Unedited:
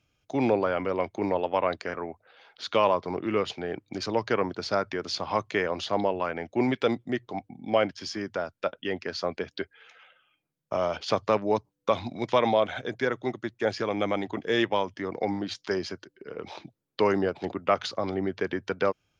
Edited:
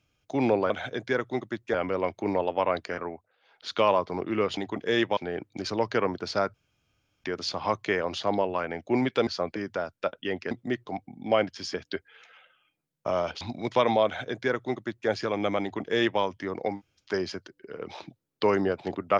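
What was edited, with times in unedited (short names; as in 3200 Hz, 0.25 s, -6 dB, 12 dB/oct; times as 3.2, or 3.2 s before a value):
2.02–2.64 dip -14 dB, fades 0.27 s
4.9 insert room tone 0.70 s
6.93–8.16 swap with 9.11–9.4
11.07–11.98 cut
12.62–13.66 copy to 0.7
14.18–14.78 copy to 3.53
15.31–15.62 room tone, crossfade 0.16 s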